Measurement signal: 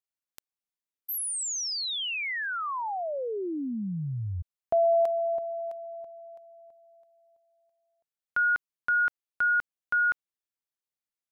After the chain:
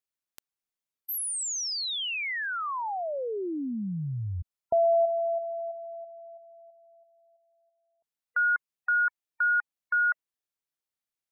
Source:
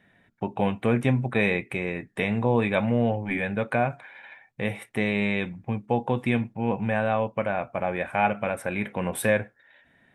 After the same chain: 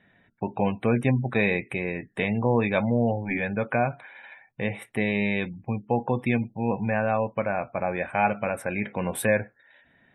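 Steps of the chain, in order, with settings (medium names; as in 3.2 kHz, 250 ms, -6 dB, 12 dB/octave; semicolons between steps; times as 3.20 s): spectral gate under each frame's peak -30 dB strong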